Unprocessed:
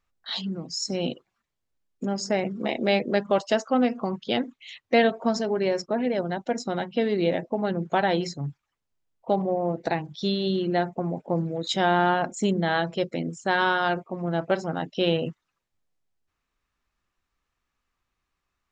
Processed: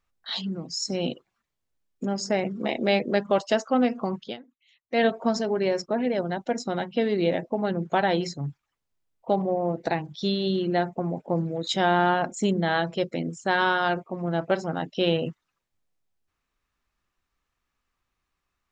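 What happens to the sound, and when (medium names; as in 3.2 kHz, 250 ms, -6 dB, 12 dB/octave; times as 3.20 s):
4.20–5.05 s: dip -20 dB, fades 0.17 s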